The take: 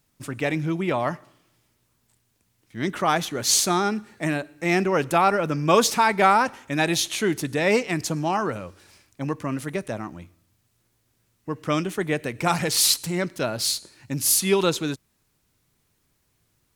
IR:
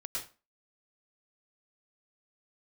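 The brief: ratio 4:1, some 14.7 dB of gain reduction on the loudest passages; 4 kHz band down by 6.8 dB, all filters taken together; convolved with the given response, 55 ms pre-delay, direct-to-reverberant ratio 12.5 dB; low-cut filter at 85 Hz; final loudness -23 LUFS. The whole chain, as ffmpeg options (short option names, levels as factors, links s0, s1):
-filter_complex "[0:a]highpass=85,equalizer=f=4000:t=o:g=-8.5,acompressor=threshold=0.0282:ratio=4,asplit=2[s0][s1];[1:a]atrim=start_sample=2205,adelay=55[s2];[s1][s2]afir=irnorm=-1:irlink=0,volume=0.211[s3];[s0][s3]amix=inputs=2:normalize=0,volume=3.55"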